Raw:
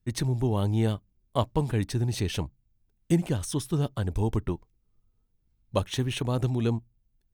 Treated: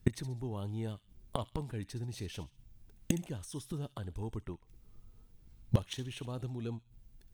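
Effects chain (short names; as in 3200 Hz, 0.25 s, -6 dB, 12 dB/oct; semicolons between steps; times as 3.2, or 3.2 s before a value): soft clip -13 dBFS, distortion -24 dB; flipped gate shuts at -27 dBFS, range -25 dB; on a send: thin delay 66 ms, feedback 37%, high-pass 2400 Hz, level -12 dB; on the sum: gain +12.5 dB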